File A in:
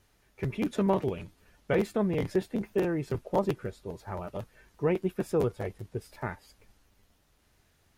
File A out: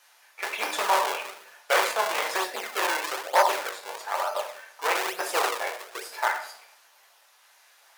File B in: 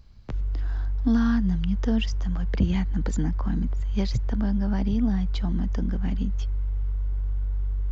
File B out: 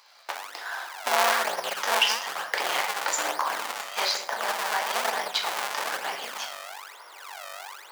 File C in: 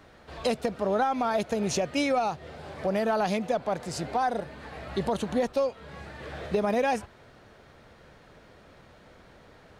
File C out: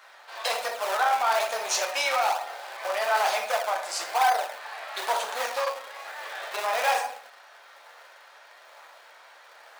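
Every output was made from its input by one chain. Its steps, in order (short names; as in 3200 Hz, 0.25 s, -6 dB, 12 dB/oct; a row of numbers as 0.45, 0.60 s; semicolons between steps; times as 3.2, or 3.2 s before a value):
shoebox room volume 96 m³, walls mixed, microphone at 0.79 m; in parallel at -7 dB: decimation with a swept rate 40×, swing 160% 1.1 Hz; on the sum: hard clip -17.5 dBFS; HPF 750 Hz 24 dB/oct; match loudness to -27 LUFS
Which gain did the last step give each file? +10.5, +11.5, +4.0 dB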